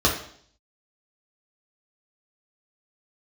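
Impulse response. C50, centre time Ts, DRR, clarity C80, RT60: 7.0 dB, 26 ms, -3.0 dB, 10.5 dB, 0.60 s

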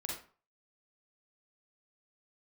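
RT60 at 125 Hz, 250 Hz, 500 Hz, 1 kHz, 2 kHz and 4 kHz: 0.40 s, 0.40 s, 0.40 s, 0.45 s, 0.35 s, 0.30 s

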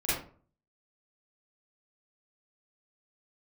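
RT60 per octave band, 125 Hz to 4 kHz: 0.60 s, 0.50 s, 0.45 s, 0.40 s, 0.30 s, 0.25 s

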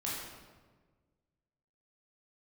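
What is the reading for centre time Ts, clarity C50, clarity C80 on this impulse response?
84 ms, -0.5 dB, 2.0 dB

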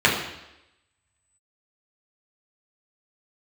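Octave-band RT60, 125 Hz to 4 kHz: 0.80 s, 0.90 s, 0.90 s, 0.90 s, 0.90 s, 0.90 s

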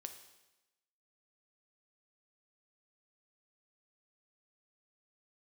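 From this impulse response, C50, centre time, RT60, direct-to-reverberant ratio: 9.0 dB, 16 ms, 1.0 s, 6.5 dB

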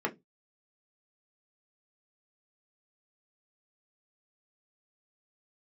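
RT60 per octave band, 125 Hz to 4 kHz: 0.35 s, 0.25 s, 0.20 s, 0.15 s, 0.15 s, 0.15 s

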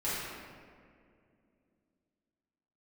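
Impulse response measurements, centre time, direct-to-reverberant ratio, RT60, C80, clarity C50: 129 ms, -12.0 dB, 2.3 s, -0.5 dB, -3.0 dB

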